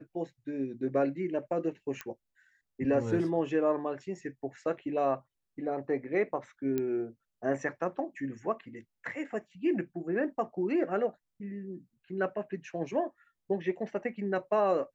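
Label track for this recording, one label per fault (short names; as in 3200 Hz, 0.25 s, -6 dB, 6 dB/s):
2.010000	2.010000	pop -21 dBFS
6.780000	6.780000	pop -19 dBFS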